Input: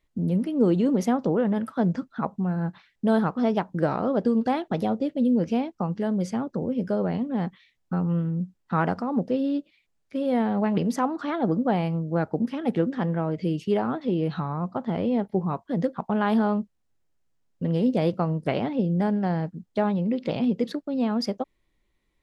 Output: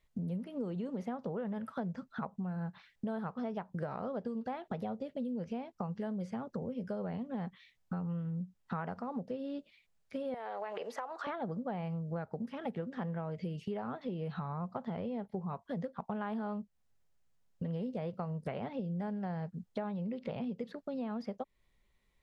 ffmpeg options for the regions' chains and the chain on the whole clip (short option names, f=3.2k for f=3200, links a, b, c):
-filter_complex "[0:a]asettb=1/sr,asplit=3[a][b][c];[a]atrim=end=10.344[d];[b]atrim=start=10.34:end=11.27,asetpts=PTS-STARTPTS,afade=t=in:d=0.004:c=qsin,afade=t=out:st=0.926:d=0.004:c=qsin,highpass=f=450:w=0.5412,highpass=f=450:w=1.3066,acompressor=threshold=-28dB:ratio=6:attack=3.2:release=140:knee=1:detection=peak[e];[c]atrim=start=11.266[f];[d][e]acrossfade=d=0.004:c1=hsin:c2=qsin[g];[g][f]acrossfade=d=0.004:c1=qsin:c2=hsin,acrossover=split=2800[h][i];[i]acompressor=threshold=-54dB:ratio=4:attack=1:release=60[j];[h][j]amix=inputs=2:normalize=0,equalizer=f=310:w=4.4:g=-13.5,acompressor=threshold=-35dB:ratio=6,volume=-1dB"